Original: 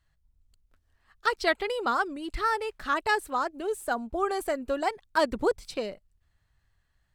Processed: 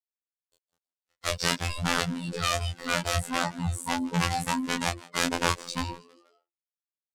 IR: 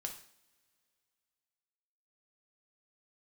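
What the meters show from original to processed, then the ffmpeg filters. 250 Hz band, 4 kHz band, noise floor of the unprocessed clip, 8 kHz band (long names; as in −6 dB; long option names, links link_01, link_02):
+3.5 dB, +7.5 dB, −72 dBFS, +12.5 dB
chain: -filter_complex "[0:a]afftfilt=real='real(if(between(b,1,1008),(2*floor((b-1)/24)+1)*24-b,b),0)':imag='imag(if(between(b,1,1008),(2*floor((b-1)/24)+1)*24-b,b),0)*if(between(b,1,1008),-1,1)':win_size=2048:overlap=0.75,adynamicequalizer=threshold=0.00562:dfrequency=280:dqfactor=0.9:tfrequency=280:tqfactor=0.9:attack=5:release=100:ratio=0.375:range=3:mode=boostabove:tftype=bell,acrossover=split=150[link_01][link_02];[link_02]acontrast=47[link_03];[link_01][link_03]amix=inputs=2:normalize=0,bass=frequency=250:gain=7,treble=frequency=4000:gain=11,aeval=exprs='(mod(4.22*val(0)+1,2)-1)/4.22':channel_layout=same,lowpass=8600,aeval=exprs='sgn(val(0))*max(abs(val(0))-0.00422,0)':channel_layout=same,asplit=4[link_04][link_05][link_06][link_07];[link_05]adelay=160,afreqshift=120,volume=-22dB[link_08];[link_06]adelay=320,afreqshift=240,volume=-30.2dB[link_09];[link_07]adelay=480,afreqshift=360,volume=-38.4dB[link_10];[link_04][link_08][link_09][link_10]amix=inputs=4:normalize=0,flanger=delay=17.5:depth=5.3:speed=0.5,dynaudnorm=framelen=100:gausssize=11:maxgain=14dB,afftfilt=real='hypot(re,im)*cos(PI*b)':imag='0':win_size=2048:overlap=0.75,volume=-11dB"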